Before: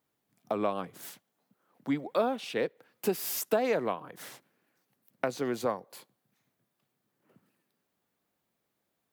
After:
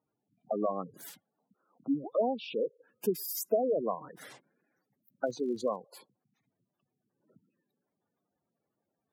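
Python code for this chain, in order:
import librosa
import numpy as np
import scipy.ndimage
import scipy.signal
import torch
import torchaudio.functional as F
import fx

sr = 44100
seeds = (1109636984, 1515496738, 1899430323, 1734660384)

y = fx.spec_gate(x, sr, threshold_db=-10, keep='strong')
y = fx.dmg_crackle(y, sr, seeds[0], per_s=69.0, level_db=-50.0, at=(5.25, 5.77), fade=0.02)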